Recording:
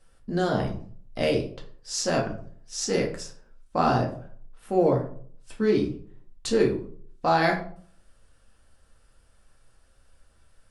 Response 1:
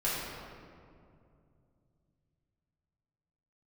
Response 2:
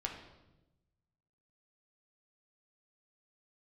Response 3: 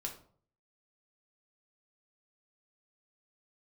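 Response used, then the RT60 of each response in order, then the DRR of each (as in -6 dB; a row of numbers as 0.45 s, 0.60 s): 3; 2.4 s, 1.0 s, 0.50 s; -9.5 dB, 0.5 dB, 0.5 dB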